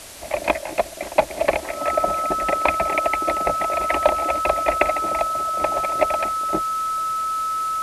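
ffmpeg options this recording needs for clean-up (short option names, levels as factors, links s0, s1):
-af "bandreject=f=1300:w=30,afftdn=nr=30:nf=-33"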